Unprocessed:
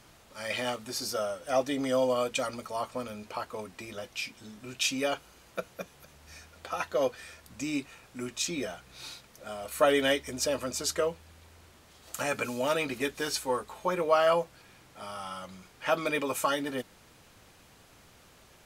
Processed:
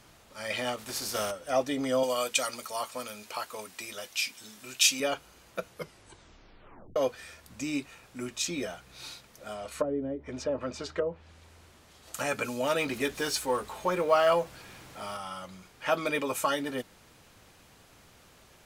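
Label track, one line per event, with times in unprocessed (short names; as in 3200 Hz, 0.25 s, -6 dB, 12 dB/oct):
0.770000	1.300000	spectral contrast lowered exponent 0.62
2.030000	5.000000	tilt +3 dB/oct
5.670000	5.670000	tape stop 1.29 s
9.530000	12.150000	treble ducked by the level closes to 320 Hz, closed at -22 dBFS
12.760000	15.170000	G.711 law mismatch coded by mu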